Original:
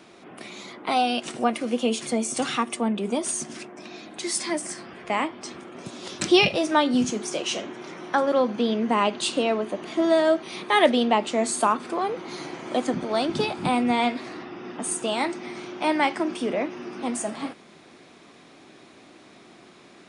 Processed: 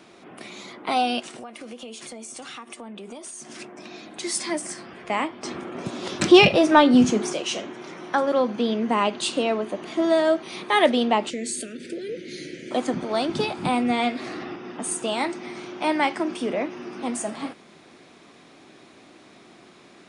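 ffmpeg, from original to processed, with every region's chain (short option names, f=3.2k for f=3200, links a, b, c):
-filter_complex "[0:a]asettb=1/sr,asplit=3[a][b][c];[a]atrim=end=1.214[d];[b]atrim=start=1.21:end=3.59,asetpts=PTS-STARTPTS,afade=t=in:d=0.004:c=qsin,afade=t=out:st=2.376:d=0.004:c=qsin,lowshelf=f=270:g=-8,acompressor=threshold=-35dB:ratio=8:attack=3.2:release=140:knee=1:detection=peak[e];[c]atrim=start=3.586[f];[d][e]acrossfade=d=0.004:c1=hsin:c2=qsin[g];[g][f]acrossfade=d=0.004:c1=qsin:c2=hsin,asettb=1/sr,asplit=3[h][i][j];[h]atrim=end=5.434[k];[i]atrim=start=5.43:end=7.33,asetpts=PTS-STARTPTS,afade=t=in:d=0.004:c=qsin,afade=t=out:st=1.896:d=0.004:c=qsin,highshelf=f=3.7k:g=-8.5,acontrast=80[l];[j]atrim=start=7.326[m];[k][l]acrossfade=d=0.004:c1=hsin:c2=qsin[n];[n][m]acrossfade=d=0.004:c1=qsin:c2=hsin,asettb=1/sr,asplit=3[o][p][q];[o]atrim=end=11.304[r];[p]atrim=start=11.3:end=12.71,asetpts=PTS-STARTPTS,afade=t=in:d=0.004:c=qsin,afade=t=out:st=1.406:d=0.004:c=qsin,acompressor=threshold=-26dB:ratio=2:attack=3.2:release=140:knee=1:detection=peak,asuperstop=centerf=950:order=8:qfactor=0.83[s];[q]atrim=start=12.706[t];[r][s]acrossfade=d=0.004:c1=hsin:c2=qsin[u];[u][t]acrossfade=d=0.004:c1=qsin:c2=hsin,asettb=1/sr,asplit=3[v][w][x];[v]atrim=end=13.864[y];[w]atrim=start=13.86:end=14.56,asetpts=PTS-STARTPTS,afade=t=in:d=0.004:c=qsin,afade=t=out:st=0.696:d=0.004:c=qsin,bandreject=f=970:w=9.8,acompressor=mode=upward:threshold=-26dB:ratio=2.5:attack=3.2:release=140:knee=2.83:detection=peak[z];[x]atrim=start=14.556[aa];[y][z]acrossfade=d=0.004:c1=hsin:c2=qsin[ab];[ab][aa]acrossfade=d=0.004:c1=qsin:c2=hsin"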